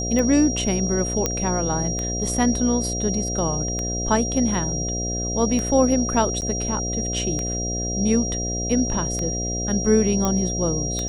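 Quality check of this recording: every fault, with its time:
mains buzz 60 Hz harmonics 12 −28 dBFS
scratch tick 33 1/3 rpm −13 dBFS
whistle 5,700 Hz −27 dBFS
0:01.26: click −6 dBFS
0:06.41–0:06.42: drop-out 9 ms
0:10.25: click −9 dBFS

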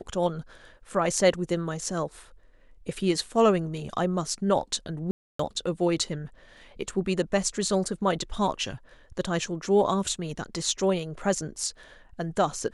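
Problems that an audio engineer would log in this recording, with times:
0:05.11–0:05.39: drop-out 284 ms

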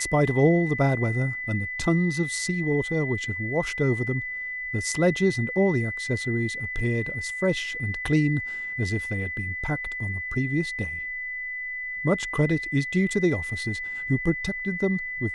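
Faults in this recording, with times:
whistle 2,000 Hz −30 dBFS

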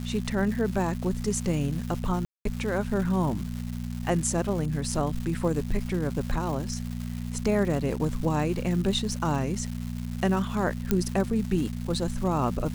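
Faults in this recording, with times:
surface crackle 390 per second −34 dBFS
mains hum 60 Hz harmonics 4 −33 dBFS
0:02.25–0:02.45: drop-out 203 ms
0:10.91: click −10 dBFS

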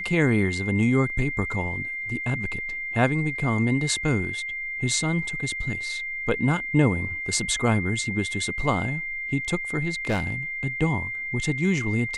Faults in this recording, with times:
whistle 2,100 Hz −29 dBFS
0:10.08–0:10.34: clipping −19.5 dBFS

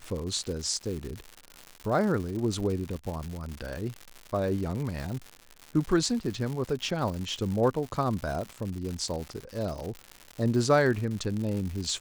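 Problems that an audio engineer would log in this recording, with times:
surface crackle 180 per second −33 dBFS

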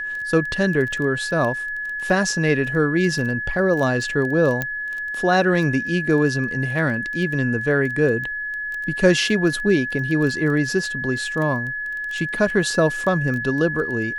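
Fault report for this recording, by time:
surface crackle 12 per second −26 dBFS
whistle 1,700 Hz −25 dBFS
0:04.62: click −9 dBFS

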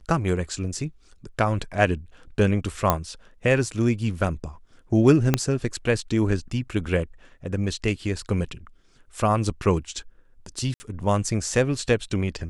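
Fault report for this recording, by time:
0:02.90: click −5 dBFS
0:05.34: click −4 dBFS
0:10.74–0:10.80: drop-out 60 ms

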